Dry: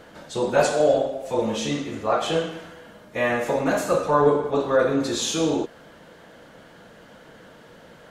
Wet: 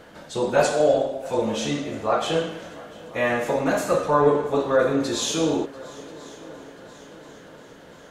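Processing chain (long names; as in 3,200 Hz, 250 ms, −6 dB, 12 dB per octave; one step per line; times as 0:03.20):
echo machine with several playback heads 345 ms, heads second and third, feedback 56%, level −22 dB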